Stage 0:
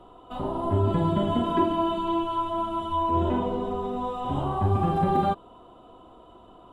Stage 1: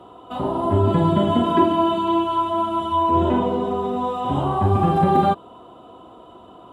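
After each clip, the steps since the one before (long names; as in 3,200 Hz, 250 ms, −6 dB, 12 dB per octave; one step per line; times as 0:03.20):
high-pass filter 88 Hz
level +6.5 dB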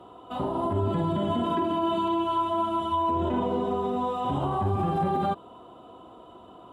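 brickwall limiter −14.5 dBFS, peak gain reduction 9 dB
level −4 dB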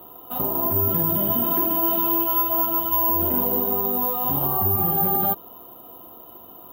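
bad sample-rate conversion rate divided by 3×, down filtered, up zero stuff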